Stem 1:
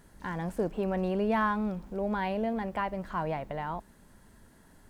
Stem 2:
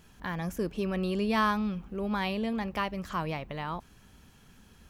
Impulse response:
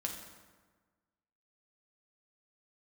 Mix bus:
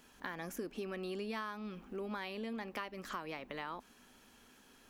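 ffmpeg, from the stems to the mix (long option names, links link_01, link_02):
-filter_complex "[0:a]equalizer=frequency=250:width_type=o:width=0.4:gain=14.5,volume=-15.5dB[link_01];[1:a]highpass=frequency=330:width=0.5412,highpass=frequency=330:width=1.3066,volume=-1,volume=-1.5dB[link_02];[link_01][link_02]amix=inputs=2:normalize=0,acompressor=threshold=-38dB:ratio=6"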